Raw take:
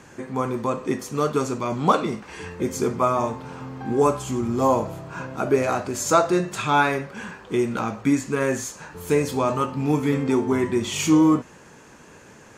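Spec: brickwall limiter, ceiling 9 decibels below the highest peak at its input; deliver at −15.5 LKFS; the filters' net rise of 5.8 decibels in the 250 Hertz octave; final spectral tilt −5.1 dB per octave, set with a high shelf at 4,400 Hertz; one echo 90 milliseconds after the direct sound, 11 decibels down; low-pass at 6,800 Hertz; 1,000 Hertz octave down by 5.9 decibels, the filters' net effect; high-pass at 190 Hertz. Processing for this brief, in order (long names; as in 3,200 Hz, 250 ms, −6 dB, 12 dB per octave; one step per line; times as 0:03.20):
high-pass filter 190 Hz
low-pass filter 6,800 Hz
parametric band 250 Hz +9 dB
parametric band 1,000 Hz −8.5 dB
high-shelf EQ 4,400 Hz +4.5 dB
brickwall limiter −12.5 dBFS
single-tap delay 90 ms −11 dB
level +7.5 dB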